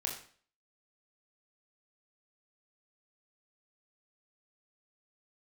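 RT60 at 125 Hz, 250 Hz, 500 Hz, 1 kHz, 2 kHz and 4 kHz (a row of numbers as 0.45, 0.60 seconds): 0.50, 0.50, 0.45, 0.45, 0.45, 0.45 seconds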